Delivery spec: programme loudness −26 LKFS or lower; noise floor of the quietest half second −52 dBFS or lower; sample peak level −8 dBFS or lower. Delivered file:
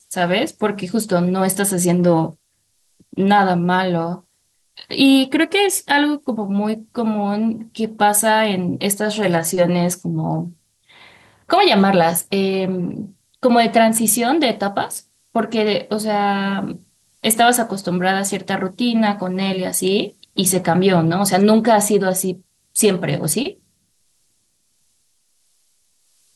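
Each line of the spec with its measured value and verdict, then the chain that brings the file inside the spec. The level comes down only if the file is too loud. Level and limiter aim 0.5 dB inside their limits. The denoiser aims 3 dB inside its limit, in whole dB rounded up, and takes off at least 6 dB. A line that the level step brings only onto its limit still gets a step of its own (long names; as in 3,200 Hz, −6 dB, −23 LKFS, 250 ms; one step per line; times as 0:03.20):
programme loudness −17.5 LKFS: out of spec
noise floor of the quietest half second −65 dBFS: in spec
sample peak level −4.0 dBFS: out of spec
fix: level −9 dB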